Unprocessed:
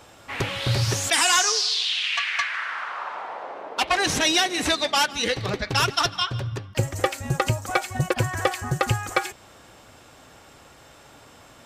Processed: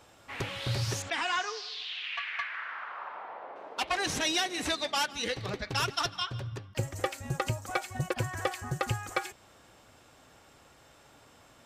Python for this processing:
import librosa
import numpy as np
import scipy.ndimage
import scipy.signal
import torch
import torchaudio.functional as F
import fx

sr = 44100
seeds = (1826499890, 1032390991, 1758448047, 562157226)

y = fx.lowpass(x, sr, hz=2800.0, slope=12, at=(1.02, 3.56))
y = y * 10.0 ** (-8.5 / 20.0)